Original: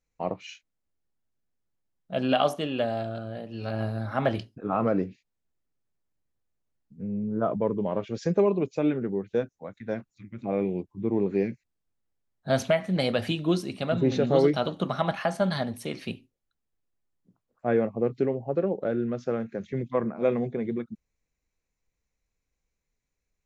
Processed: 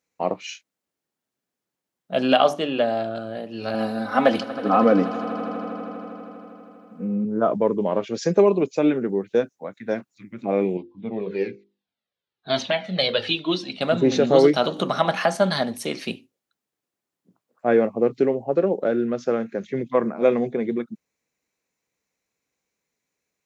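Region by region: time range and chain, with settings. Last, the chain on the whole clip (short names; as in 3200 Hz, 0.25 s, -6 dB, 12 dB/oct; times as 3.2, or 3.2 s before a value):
2.37–3.16 LPF 3500 Hz 6 dB/oct + notches 50/100/150/200/250/300/350 Hz
3.74–7.25 comb 4 ms, depth 77% + swelling echo 80 ms, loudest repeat 5, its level -18 dB
10.77–13.81 synth low-pass 3700 Hz, resonance Q 2.7 + notches 50/100/150/200/250/300/350/400/450/500 Hz + cascading flanger falling 1.1 Hz
14.64–15.27 HPF 53 Hz + notches 60/120/180/240/300/360/420/480/540 Hz + upward compressor, threshold -27 dBFS
whole clip: HPF 210 Hz 12 dB/oct; dynamic EQ 6100 Hz, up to +5 dB, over -55 dBFS, Q 1.1; gain +6.5 dB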